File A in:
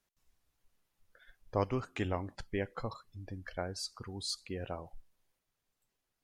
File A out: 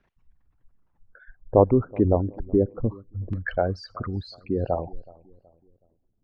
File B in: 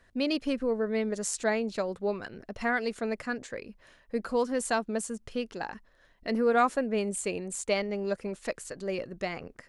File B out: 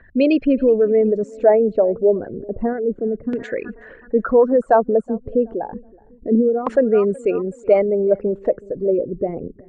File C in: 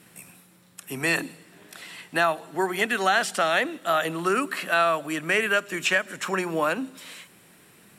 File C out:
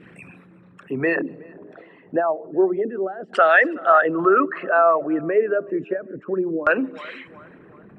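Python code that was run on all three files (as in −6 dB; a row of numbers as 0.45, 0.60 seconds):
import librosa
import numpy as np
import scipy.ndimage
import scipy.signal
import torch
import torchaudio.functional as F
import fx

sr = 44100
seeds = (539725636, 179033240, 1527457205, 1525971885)

y = fx.envelope_sharpen(x, sr, power=2.0)
y = fx.echo_feedback(y, sr, ms=373, feedback_pct=42, wet_db=-23.0)
y = fx.filter_lfo_lowpass(y, sr, shape='saw_down', hz=0.3, low_hz=260.0, high_hz=2500.0, q=1.1)
y = y * 10.0 ** (-3 / 20.0) / np.max(np.abs(y))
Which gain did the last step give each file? +14.0, +13.5, +7.5 decibels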